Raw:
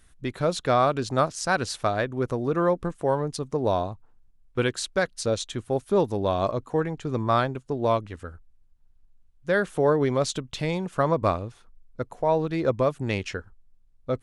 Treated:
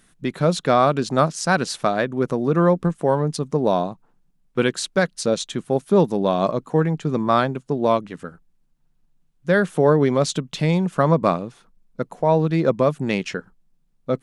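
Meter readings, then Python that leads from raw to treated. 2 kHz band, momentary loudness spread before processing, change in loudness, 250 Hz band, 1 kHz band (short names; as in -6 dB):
+4.0 dB, 11 LU, +5.0 dB, +7.5 dB, +4.0 dB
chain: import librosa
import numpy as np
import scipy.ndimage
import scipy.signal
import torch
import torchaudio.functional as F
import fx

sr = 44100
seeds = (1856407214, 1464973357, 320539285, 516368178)

y = fx.low_shelf_res(x, sr, hz=120.0, db=-10.0, q=3.0)
y = F.gain(torch.from_numpy(y), 4.0).numpy()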